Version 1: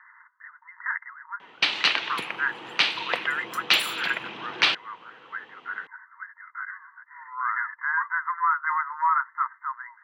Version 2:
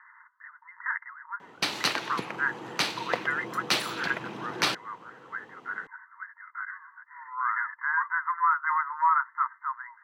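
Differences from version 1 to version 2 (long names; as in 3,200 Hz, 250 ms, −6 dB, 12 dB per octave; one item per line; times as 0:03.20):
first sound: remove low-pass with resonance 3,000 Hz, resonance Q 2
master: add spectral tilt −2.5 dB per octave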